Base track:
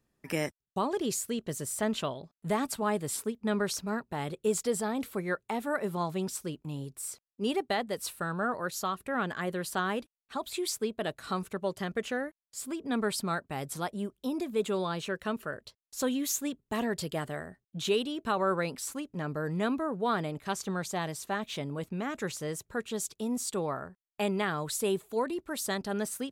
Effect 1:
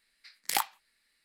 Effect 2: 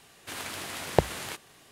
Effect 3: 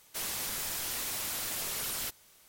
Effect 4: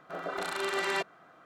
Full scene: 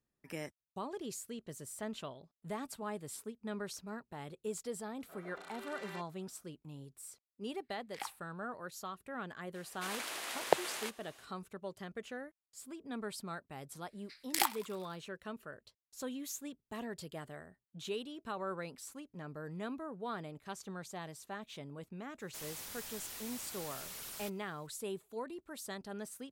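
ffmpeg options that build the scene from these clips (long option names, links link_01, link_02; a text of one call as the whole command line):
ffmpeg -i bed.wav -i cue0.wav -i cue1.wav -i cue2.wav -i cue3.wav -filter_complex "[1:a]asplit=2[link_01][link_02];[0:a]volume=-11.5dB[link_03];[link_01]lowpass=3000[link_04];[2:a]highpass=420[link_05];[link_02]asplit=6[link_06][link_07][link_08][link_09][link_10][link_11];[link_07]adelay=100,afreqshift=100,volume=-21.5dB[link_12];[link_08]adelay=200,afreqshift=200,volume=-25.7dB[link_13];[link_09]adelay=300,afreqshift=300,volume=-29.8dB[link_14];[link_10]adelay=400,afreqshift=400,volume=-34dB[link_15];[link_11]adelay=500,afreqshift=500,volume=-38.1dB[link_16];[link_06][link_12][link_13][link_14][link_15][link_16]amix=inputs=6:normalize=0[link_17];[4:a]atrim=end=1.45,asetpts=PTS-STARTPTS,volume=-17dB,afade=type=in:duration=0.004:curve=hsin,afade=type=out:start_time=1.446:duration=0.004:curve=hsin,adelay=4990[link_18];[link_04]atrim=end=1.24,asetpts=PTS-STARTPTS,volume=-13dB,afade=type=in:duration=0.004:curve=hsin,afade=type=out:start_time=1.236:duration=0.004:curve=hsin,adelay=7450[link_19];[link_05]atrim=end=1.71,asetpts=PTS-STARTPTS,volume=-3.5dB,afade=type=in:duration=0.004:curve=hsin,afade=type=out:start_time=1.706:duration=0.004:curve=hsin,adelay=420714S[link_20];[link_17]atrim=end=1.24,asetpts=PTS-STARTPTS,volume=-2.5dB,afade=type=in:duration=0.004:curve=hsin,afade=type=out:start_time=1.236:duration=0.004:curve=hsin,adelay=13850[link_21];[3:a]atrim=end=2.48,asetpts=PTS-STARTPTS,volume=-11dB,afade=type=in:duration=0.004:curve=hsin,afade=type=out:start_time=2.476:duration=0.004:curve=hsin,adelay=22190[link_22];[link_03][link_18][link_19][link_20][link_21][link_22]amix=inputs=6:normalize=0" out.wav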